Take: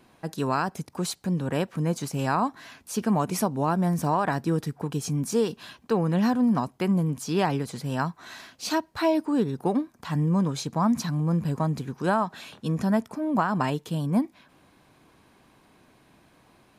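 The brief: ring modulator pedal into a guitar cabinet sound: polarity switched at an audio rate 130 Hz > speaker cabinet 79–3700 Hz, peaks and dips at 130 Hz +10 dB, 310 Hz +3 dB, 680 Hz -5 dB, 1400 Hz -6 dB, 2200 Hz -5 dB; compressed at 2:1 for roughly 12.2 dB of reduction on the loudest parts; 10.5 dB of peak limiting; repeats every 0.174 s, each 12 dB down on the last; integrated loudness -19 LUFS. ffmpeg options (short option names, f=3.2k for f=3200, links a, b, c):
-af "acompressor=threshold=-42dB:ratio=2,alimiter=level_in=8.5dB:limit=-24dB:level=0:latency=1,volume=-8.5dB,aecho=1:1:174|348|522:0.251|0.0628|0.0157,aeval=exprs='val(0)*sgn(sin(2*PI*130*n/s))':c=same,highpass=79,equalizer=f=130:t=q:w=4:g=10,equalizer=f=310:t=q:w=4:g=3,equalizer=f=680:t=q:w=4:g=-5,equalizer=f=1.4k:t=q:w=4:g=-6,equalizer=f=2.2k:t=q:w=4:g=-5,lowpass=f=3.7k:w=0.5412,lowpass=f=3.7k:w=1.3066,volume=22.5dB"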